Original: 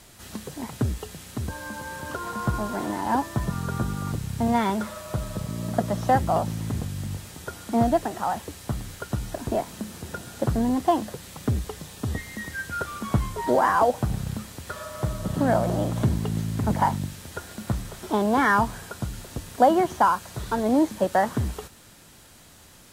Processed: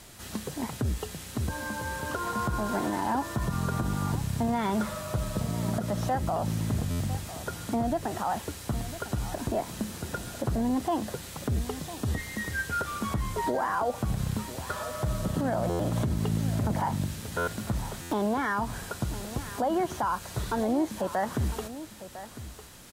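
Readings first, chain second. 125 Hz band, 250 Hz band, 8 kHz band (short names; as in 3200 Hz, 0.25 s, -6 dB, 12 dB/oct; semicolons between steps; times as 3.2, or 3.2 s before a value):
-2.0 dB, -4.0 dB, -0.5 dB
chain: compressor 3:1, threshold -23 dBFS, peak gain reduction 8.5 dB; limiter -20.5 dBFS, peak gain reduction 9 dB; on a send: echo 1.003 s -14 dB; on the sum: stuck buffer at 6.9/15.69/17.37/18.01, samples 512; gain +1 dB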